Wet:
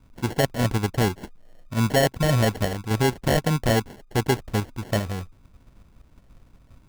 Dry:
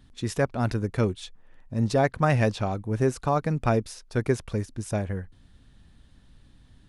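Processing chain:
in parallel at +2.5 dB: output level in coarse steps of 13 dB
on the sum: decimation without filtering 36×
level −2.5 dB

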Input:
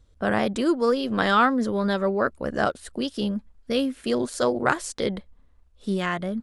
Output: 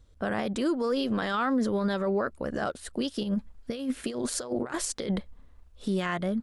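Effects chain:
0:03.23–0:05.89: compressor whose output falls as the input rises −28 dBFS, ratio −0.5
brickwall limiter −19.5 dBFS, peak gain reduction 11 dB

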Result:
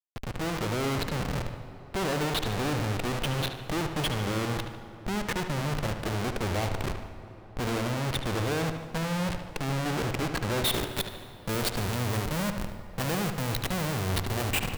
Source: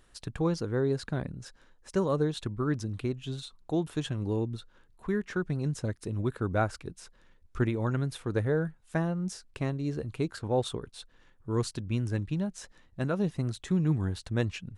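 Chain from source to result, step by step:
phaser with its sweep stopped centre 2,800 Hz, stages 4
comparator with hysteresis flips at −42 dBFS
high-shelf EQ 9,800 Hz −5.5 dB, from 0:10.65 +6 dB
convolution reverb RT60 5.2 s, pre-delay 87 ms, DRR 13 dB
automatic gain control gain up to 3 dB
low-shelf EQ 400 Hz −5.5 dB
feedback echo with a low-pass in the loop 74 ms, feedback 59%, low-pass 4,000 Hz, level −8 dB
one half of a high-frequency compander decoder only
level +3.5 dB

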